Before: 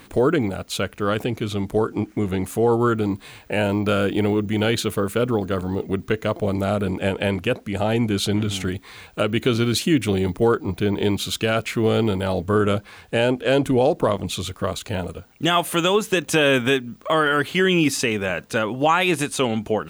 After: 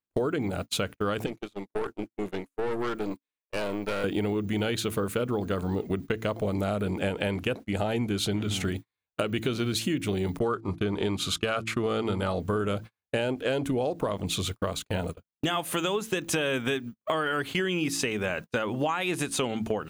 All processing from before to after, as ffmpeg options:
-filter_complex "[0:a]asettb=1/sr,asplit=3[s0][s1][s2];[s0]atrim=end=1.264[s3];[s1]atrim=start=1.26:end=4.04,asetpts=PTS-STARTPTS,afade=t=in:d=0.004:c=qsin,afade=t=out:st=2.776:d=0.004:c=qsin,highpass=290,equalizer=f=750:w=6.3:g=-5,aeval=exprs='(tanh(14.1*val(0)+0.7)-tanh(0.7))/14.1':c=same[s4];[s2]atrim=start=4.036[s5];[s3][s4]acrossfade=d=0.004:c1=hsin:c2=qsin[s6];[s6][s5]acrossfade=d=0.004:c1=qsin:c2=hsin,asettb=1/sr,asplit=3[s7][s8][s9];[s7]atrim=end=10.394[s10];[s8]atrim=start=10.39:end=12.4,asetpts=PTS-STARTPTS,afade=t=in:d=0.004:c=qsin,afade=t=out:st=2.006:d=0.004:c=qsin,lowpass=11000,agate=range=0.112:threshold=0.0251:ratio=16:release=100:detection=peak,equalizer=f=1200:w=5.2:g=10[s11];[s9]atrim=start=12.396[s12];[s10][s11]acrossfade=d=0.004:c1=hsin:c2=qsin[s13];[s13][s12]acrossfade=d=0.004:c1=qsin:c2=hsin,bandreject=f=55.8:t=h:w=4,bandreject=f=111.6:t=h:w=4,bandreject=f=167.4:t=h:w=4,bandreject=f=223.2:t=h:w=4,bandreject=f=279:t=h:w=4,bandreject=f=334.8:t=h:w=4,agate=range=0.00316:threshold=0.0316:ratio=16:detection=peak,acompressor=threshold=0.0562:ratio=6"

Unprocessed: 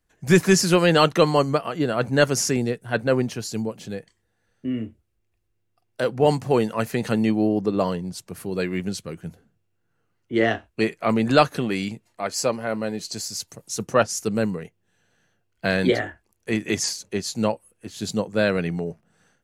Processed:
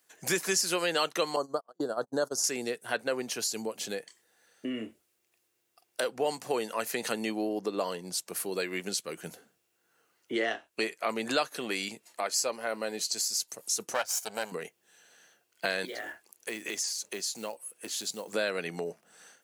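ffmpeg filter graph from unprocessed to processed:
-filter_complex "[0:a]asettb=1/sr,asplit=3[s0][s1][s2];[s0]atrim=end=1.364[s3];[s1]atrim=start=1.36:end=2.44,asetpts=PTS-STARTPTS,afade=t=in:d=0.004:c=qsin,afade=t=out:st=1.076:d=0.004:c=qsin,agate=range=0.0112:threshold=0.0562:ratio=16:release=100:detection=peak,asuperstop=centerf=2400:order=4:qfactor=0.77,highshelf=f=5100:g=-8.5[s4];[s2]atrim=start=2.436[s5];[s3][s4]acrossfade=d=0.004:c1=hsin:c2=qsin[s6];[s6][s5]acrossfade=d=0.004:c1=qsin:c2=hsin,asettb=1/sr,asplit=3[s7][s8][s9];[s7]atrim=end=13.944[s10];[s8]atrim=start=13.94:end=14.52,asetpts=PTS-STARTPTS,afade=t=in:d=0.004:c=qsin,afade=t=out:st=0.576:d=0.004:c=qsin,aeval=exprs='if(lt(val(0),0),0.251*val(0),val(0))':c=same,equalizer=f=230:w=0.99:g=-8.5,aecho=1:1:1.3:0.45,atrim=end_sample=25578[s11];[s9]atrim=start=14.516[s12];[s10][s11]acrossfade=d=0.004:c1=hsin:c2=qsin[s13];[s13][s12]acrossfade=d=0.004:c1=qsin:c2=hsin,asettb=1/sr,asplit=3[s14][s15][s16];[s14]atrim=end=15.854[s17];[s15]atrim=start=15.85:end=18.34,asetpts=PTS-STARTPTS,afade=t=in:d=0.004:c=qsin,afade=t=out:st=2.486:d=0.004:c=qsin,acompressor=threshold=0.0126:ratio=2.5:attack=3.2:release=140:knee=1:detection=peak,acrusher=bits=7:mode=log:mix=0:aa=0.000001[s18];[s16]atrim=start=18.336[s19];[s17][s18]acrossfade=d=0.004:c1=hsin:c2=qsin[s20];[s20][s19]acrossfade=d=0.004:c1=qsin:c2=hsin,highpass=390,highshelf=f=3700:g=10,acompressor=threshold=0.0112:ratio=2.5,volume=1.78"

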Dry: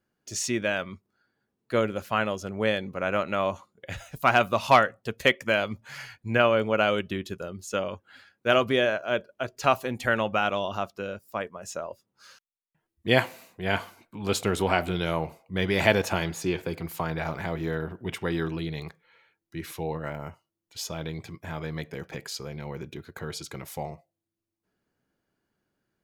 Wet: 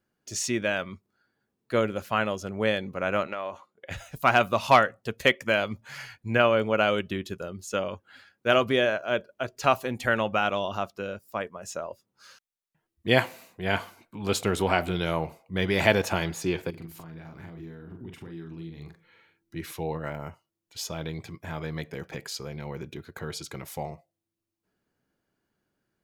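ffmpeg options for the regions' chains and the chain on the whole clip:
-filter_complex "[0:a]asettb=1/sr,asplit=3[s0][s1][s2];[s0]atrim=end=3.274[s3];[s1]atrim=start=3.27:end=3.91,asetpts=PTS-STARTPTS,afade=t=in:d=0.004:c=qsin,afade=t=out:st=0.636:d=0.004:c=qsin,bass=f=250:g=-13,treble=f=4000:g=-9,acompressor=threshold=0.0398:ratio=6:attack=3.2:release=140:knee=1:detection=peak[s4];[s2]atrim=start=3.906[s5];[s3][s4]acrossfade=d=0.004:c1=hsin:c2=qsin[s6];[s6][s5]acrossfade=d=0.004:c1=qsin:c2=hsin,asettb=1/sr,asplit=3[s7][s8][s9];[s7]atrim=end=16.704[s10];[s8]atrim=start=16.7:end=19.56,asetpts=PTS-STARTPTS,afade=t=in:d=0.004:c=qsin,afade=t=out:st=2.856:d=0.004:c=qsin,acompressor=threshold=0.00631:ratio=12:attack=3.2:release=140:knee=1:detection=peak,lowshelf=f=410:t=q:w=1.5:g=6.5,asplit=2[s11][s12];[s12]adelay=42,volume=0.562[s13];[s11][s13]amix=inputs=2:normalize=0,atrim=end_sample=126126[s14];[s9]atrim=start=19.556[s15];[s10][s14]acrossfade=d=0.004:c1=hsin:c2=qsin[s16];[s16][s15]acrossfade=d=0.004:c1=qsin:c2=hsin"

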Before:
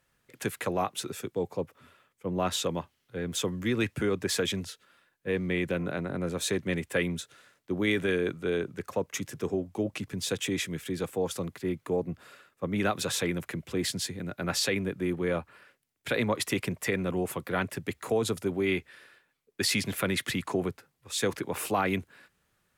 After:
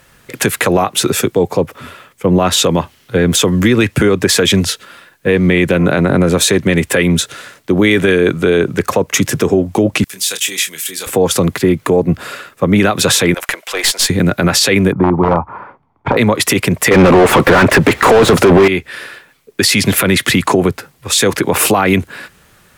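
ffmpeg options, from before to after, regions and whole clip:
-filter_complex "[0:a]asettb=1/sr,asplit=3[s0][s1][s2];[s0]atrim=end=10.044[s3];[s1]atrim=start=10.04:end=11.07,asetpts=PTS-STARTPTS,afade=t=in:d=0.004:c=qsin,afade=t=out:st=1.026:d=0.004:c=qsin,aderivative,acrossover=split=3300[s4][s5];[s5]acompressor=threshold=0.0112:ratio=4:attack=1:release=60[s6];[s4][s6]amix=inputs=2:normalize=0,asplit=2[s7][s8];[s8]adelay=26,volume=0.398[s9];[s7][s9]amix=inputs=2:normalize=0,atrim=end_sample=45423[s10];[s2]atrim=start=11.066[s11];[s3][s10]acrossfade=d=0.004:c1=hsin:c2=qsin[s12];[s12][s11]acrossfade=d=0.004:c1=qsin:c2=hsin,asettb=1/sr,asplit=3[s13][s14][s15];[s13]atrim=end=13.344[s16];[s14]atrim=start=13.34:end=14.1,asetpts=PTS-STARTPTS,afade=t=in:d=0.004:c=qsin,afade=t=out:st=0.756:d=0.004:c=qsin,highpass=f=620:w=0.5412,highpass=f=620:w=1.3066,aeval=exprs='(tanh(20*val(0)+0.45)-tanh(0.45))/20':c=same[s17];[s15]atrim=start=14.096[s18];[s16][s17]acrossfade=d=0.004:c1=hsin:c2=qsin[s19];[s19][s18]acrossfade=d=0.004:c1=qsin:c2=hsin,asettb=1/sr,asplit=3[s20][s21][s22];[s20]atrim=end=14.924[s23];[s21]atrim=start=14.92:end=16.17,asetpts=PTS-STARTPTS,afade=t=in:d=0.004:c=qsin,afade=t=out:st=1.246:d=0.004:c=qsin,aecho=1:1:0.9:0.38,atrim=end_sample=55125,aeval=exprs='(mod(11.2*val(0)+1,2)-1)/11.2':c=same,lowpass=f=910:t=q:w=3.7[s24];[s22]atrim=start=16.166[s25];[s23][s24]acrossfade=d=0.004:c1=hsin:c2=qsin[s26];[s26][s25]acrossfade=d=0.004:c1=qsin:c2=hsin,asettb=1/sr,asplit=3[s27][s28][s29];[s27]atrim=end=16.914[s30];[s28]atrim=start=16.91:end=18.68,asetpts=PTS-STARTPTS,afade=t=in:d=0.004:c=qsin,afade=t=out:st=1.766:d=0.004:c=qsin,acontrast=86,asplit=2[s31][s32];[s32]highpass=f=720:p=1,volume=50.1,asoftclip=type=tanh:threshold=0.355[s33];[s31][s33]amix=inputs=2:normalize=0,lowpass=f=1200:p=1,volume=0.501[s34];[s29]atrim=start=18.676[s35];[s30][s34]acrossfade=d=0.004:c1=hsin:c2=qsin[s36];[s36][s35]acrossfade=d=0.004:c1=qsin:c2=hsin,acompressor=threshold=0.0282:ratio=6,alimiter=level_in=20:limit=0.891:release=50:level=0:latency=1,volume=0.891"

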